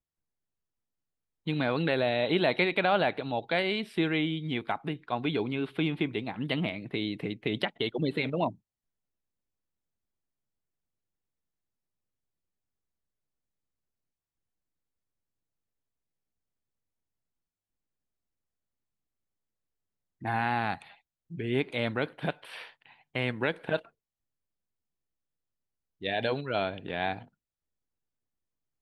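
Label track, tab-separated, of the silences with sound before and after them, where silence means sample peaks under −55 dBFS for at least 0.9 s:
8.560000	20.210000	silence
23.890000	26.010000	silence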